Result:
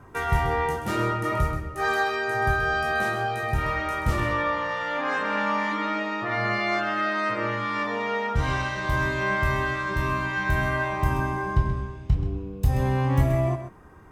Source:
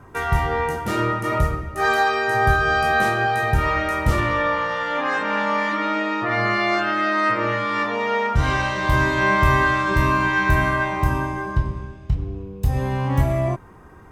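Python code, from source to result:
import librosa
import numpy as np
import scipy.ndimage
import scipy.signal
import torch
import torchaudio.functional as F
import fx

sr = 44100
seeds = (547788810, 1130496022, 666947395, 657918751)

p1 = fx.rider(x, sr, range_db=10, speed_s=2.0)
p2 = p1 + fx.echo_single(p1, sr, ms=130, db=-9.5, dry=0)
y = F.gain(torch.from_numpy(p2), -5.5).numpy()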